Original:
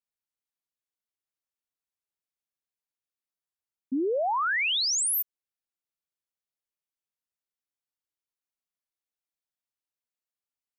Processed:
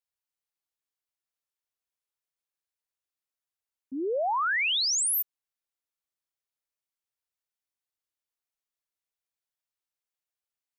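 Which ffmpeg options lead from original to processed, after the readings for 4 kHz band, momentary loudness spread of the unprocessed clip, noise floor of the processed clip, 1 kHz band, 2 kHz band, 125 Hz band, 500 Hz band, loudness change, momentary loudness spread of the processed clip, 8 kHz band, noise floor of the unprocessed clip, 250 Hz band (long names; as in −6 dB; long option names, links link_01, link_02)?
0.0 dB, 9 LU, below −85 dBFS, −0.5 dB, 0.0 dB, can't be measured, −1.5 dB, 0.0 dB, 12 LU, 0.0 dB, below −85 dBFS, −5.0 dB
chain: -af "equalizer=frequency=210:width=1.8:gain=-14"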